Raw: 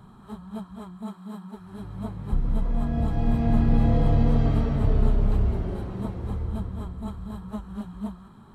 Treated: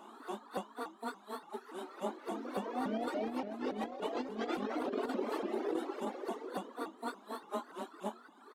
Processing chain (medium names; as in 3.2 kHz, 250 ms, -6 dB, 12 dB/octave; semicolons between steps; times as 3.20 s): doubling 22 ms -10 dB; on a send at -8.5 dB: reverberation RT60 1.0 s, pre-delay 3 ms; on the sum: reverb removal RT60 1.4 s; steep high-pass 250 Hz 96 dB/octave; compressor with a negative ratio -37 dBFS, ratio -0.5; vibrato with a chosen wave saw up 3.5 Hz, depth 250 cents; trim +1.5 dB